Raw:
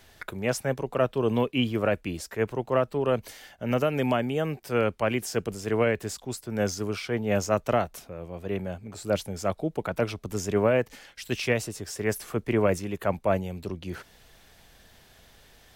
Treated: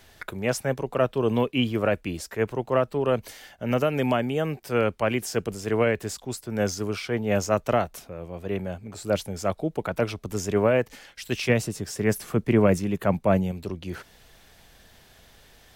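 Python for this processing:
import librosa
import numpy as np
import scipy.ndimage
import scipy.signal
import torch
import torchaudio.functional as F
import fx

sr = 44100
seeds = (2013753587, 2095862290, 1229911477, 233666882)

y = fx.peak_eq(x, sr, hz=170.0, db=7.5, octaves=1.4, at=(11.49, 13.52))
y = F.gain(torch.from_numpy(y), 1.5).numpy()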